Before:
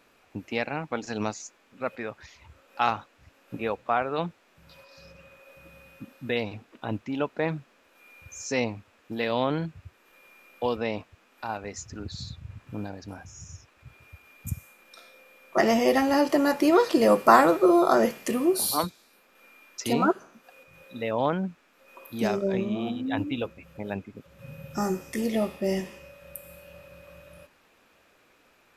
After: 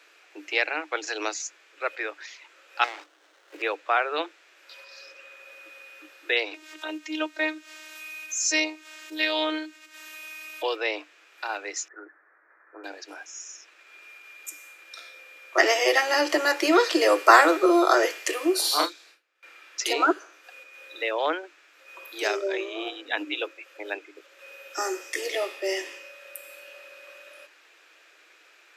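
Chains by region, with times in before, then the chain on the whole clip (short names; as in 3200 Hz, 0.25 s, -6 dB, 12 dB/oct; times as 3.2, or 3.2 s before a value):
2.84–3.62 high shelf 5000 Hz +10.5 dB + compressor 10:1, threshold -28 dBFS + running maximum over 17 samples
6.54–10.63 high shelf 4700 Hz +11 dB + upward compressor, threshold -36 dBFS + robotiser 311 Hz
11.88–12.84 steep low-pass 1900 Hz 72 dB/oct + bell 210 Hz -10 dB 2.2 oct + doubler 12 ms -11 dB
18.61–19.8 gate with hold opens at -47 dBFS, closes at -53 dBFS + high shelf 8200 Hz -8 dB + doubler 33 ms -3 dB
whole clip: Chebyshev high-pass 300 Hz, order 10; band shelf 3300 Hz +8.5 dB 2.8 oct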